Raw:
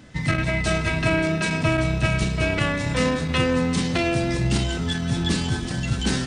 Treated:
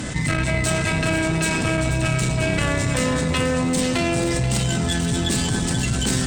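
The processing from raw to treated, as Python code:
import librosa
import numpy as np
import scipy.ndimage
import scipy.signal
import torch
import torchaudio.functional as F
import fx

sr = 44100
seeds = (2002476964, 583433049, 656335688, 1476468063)

p1 = fx.peak_eq(x, sr, hz=8000.0, db=12.5, octaves=0.5)
p2 = fx.tube_stage(p1, sr, drive_db=15.0, bias=0.55)
p3 = p2 + fx.echo_alternate(p2, sr, ms=242, hz=1000.0, feedback_pct=51, wet_db=-4.5, dry=0)
y = fx.env_flatten(p3, sr, amount_pct=70)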